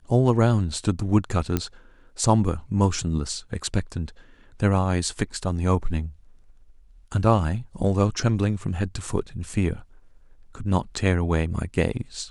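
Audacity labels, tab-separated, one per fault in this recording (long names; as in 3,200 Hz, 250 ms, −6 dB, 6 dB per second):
1.570000	1.570000	click −9 dBFS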